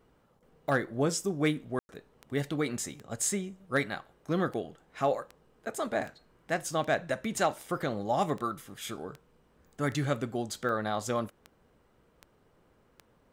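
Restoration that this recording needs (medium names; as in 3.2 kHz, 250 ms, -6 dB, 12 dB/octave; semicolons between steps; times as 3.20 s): clip repair -16.5 dBFS; de-click; room tone fill 1.79–1.89 s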